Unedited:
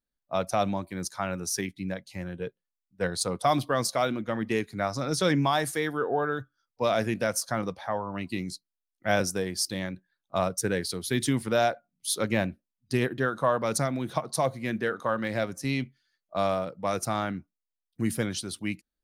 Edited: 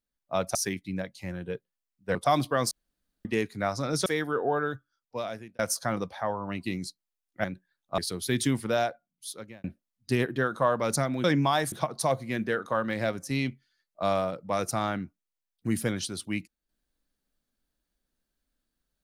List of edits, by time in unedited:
0.55–1.47 s: delete
3.07–3.33 s: delete
3.89–4.43 s: room tone
5.24–5.72 s: move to 14.06 s
6.30–7.25 s: fade out
9.10–9.85 s: delete
10.39–10.80 s: delete
11.31–12.46 s: fade out

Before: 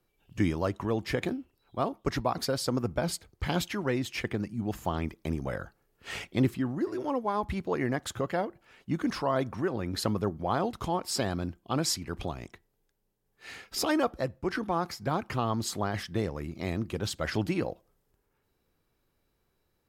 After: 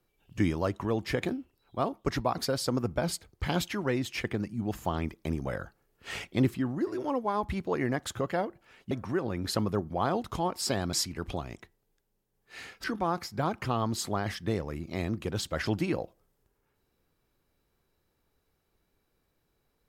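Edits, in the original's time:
8.91–9.40 s: delete
11.42–11.84 s: delete
13.75–14.52 s: delete

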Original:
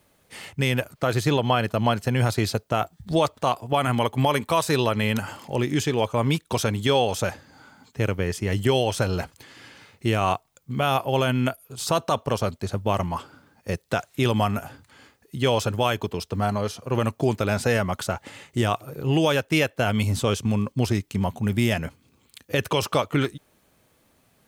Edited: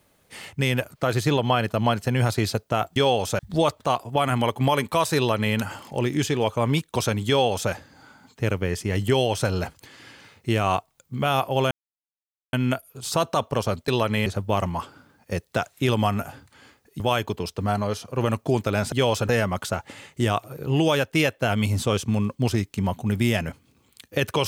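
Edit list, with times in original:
4.74–5.12 s: copy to 12.63 s
6.85–7.28 s: copy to 2.96 s
11.28 s: insert silence 0.82 s
15.37–15.74 s: move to 17.66 s

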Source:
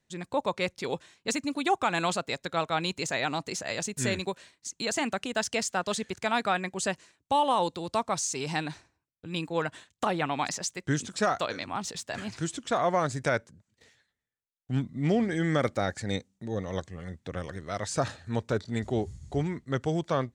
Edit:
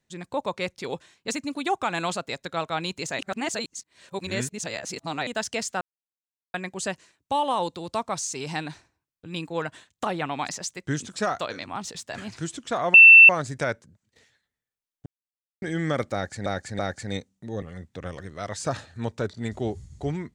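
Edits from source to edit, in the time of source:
3.19–5.27 s: reverse
5.81–6.54 s: mute
12.94 s: add tone 2.68 kHz -6 dBFS 0.35 s
14.71–15.27 s: mute
15.78–16.11 s: loop, 3 plays
16.61–16.93 s: delete

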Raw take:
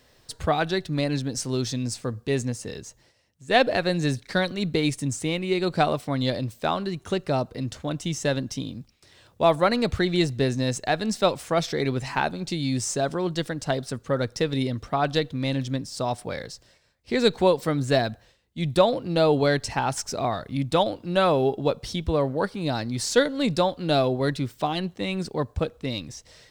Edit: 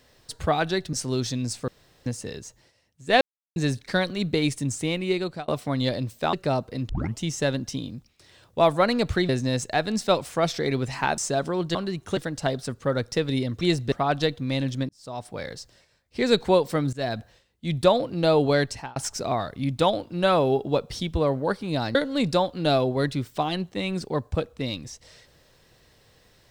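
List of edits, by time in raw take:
0.93–1.34 s: delete
2.09–2.47 s: room tone
3.62–3.97 s: mute
5.52–5.89 s: fade out
6.74–7.16 s: move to 13.41 s
7.72 s: tape start 0.30 s
10.12–10.43 s: move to 14.85 s
12.32–12.84 s: delete
15.82–16.46 s: fade in
17.86–18.12 s: fade in, from -23 dB
19.55–19.89 s: fade out
22.88–23.19 s: delete

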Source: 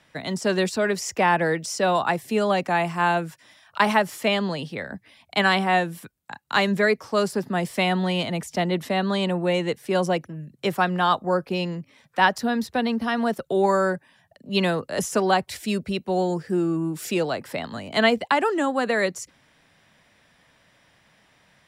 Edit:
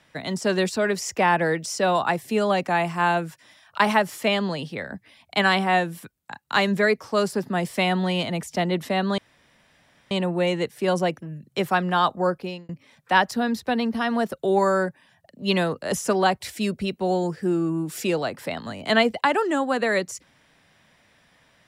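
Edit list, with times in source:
9.18 s: insert room tone 0.93 s
11.36–11.76 s: fade out

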